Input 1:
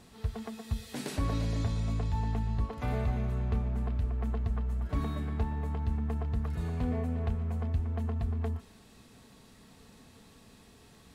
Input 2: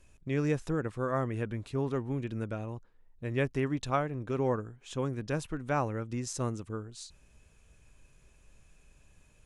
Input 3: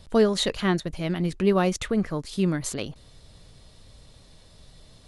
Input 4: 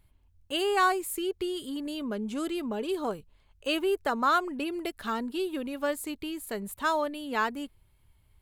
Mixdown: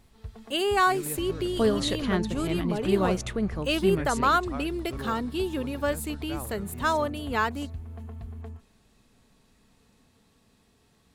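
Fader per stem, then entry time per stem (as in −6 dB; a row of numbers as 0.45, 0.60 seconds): −7.5, −9.5, −4.0, +2.0 decibels; 0.00, 0.60, 1.45, 0.00 seconds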